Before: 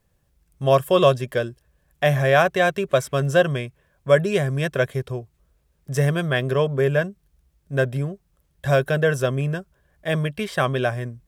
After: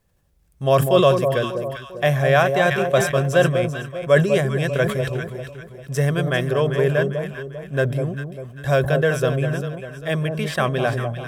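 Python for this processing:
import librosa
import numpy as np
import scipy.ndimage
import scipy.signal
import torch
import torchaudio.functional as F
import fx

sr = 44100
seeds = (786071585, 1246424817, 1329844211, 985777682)

p1 = x + fx.echo_alternate(x, sr, ms=198, hz=970.0, feedback_pct=63, wet_db=-5.5, dry=0)
y = fx.sustainer(p1, sr, db_per_s=83.0)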